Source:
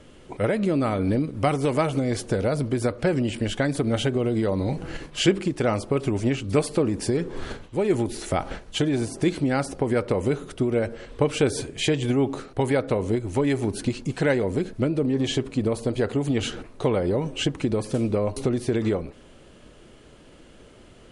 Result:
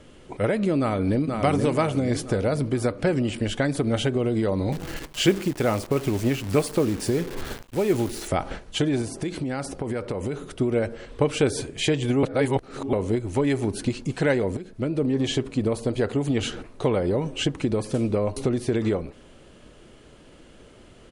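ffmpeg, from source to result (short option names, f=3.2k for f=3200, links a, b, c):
-filter_complex "[0:a]asplit=2[a][b];[b]afade=t=in:st=0.79:d=0.01,afade=t=out:st=1.27:d=0.01,aecho=0:1:480|960|1440|1920|2400|2880:0.595662|0.297831|0.148916|0.0744578|0.0372289|0.0186144[c];[a][c]amix=inputs=2:normalize=0,asettb=1/sr,asplit=3[d][e][f];[d]atrim=end=4.724[g];[e]atrim=start=4.72:end=8.28,asetpts=PTS-STARTPTS,afade=t=in:d=0.004:c=qsin,afade=t=out:st=3.556:d=0.004:c=qsin,acrusher=bits=7:dc=4:mix=0:aa=0.000001[h];[f]atrim=start=8.276[i];[g][h]acrossfade=d=0.004:c1=hsin:c2=qsin[j];[j][i]acrossfade=d=0.004:c1=qsin:c2=hsin,asettb=1/sr,asplit=3[k][l][m];[k]atrim=end=9.014[n];[l]atrim=start=9.01:end=10.43,asetpts=PTS-STARTPTS,afade=t=in:d=0.004:c=qsin,afade=t=out:st=1.416:d=0.004:c=qsin,acompressor=threshold=-24dB:ratio=6:attack=3.2:release=140:knee=1:detection=peak[o];[m]atrim=start=10.426[p];[n][o]acrossfade=d=0.004:c1=hsin:c2=qsin[q];[q][p]acrossfade=d=0.004:c1=qsin:c2=hsin,asplit=4[r][s][t][u];[r]atrim=end=12.232[v];[s]atrim=start=12.228:end=12.932,asetpts=PTS-STARTPTS,areverse[w];[t]atrim=start=12.928:end=14.57,asetpts=PTS-STARTPTS,afade=t=out:st=1.638:d=0.004:c=hsin:silence=0.188365[x];[u]atrim=start=14.57,asetpts=PTS-STARTPTS,afade=t=in:d=0.45:silence=0.188365[y];[v][w]acrossfade=d=0.004:c1=hsin:c2=hsin[z];[x][y]concat=n=2:v=0:a=1[aa];[z][aa]acrossfade=d=0.004:c1=hsin:c2=hsin"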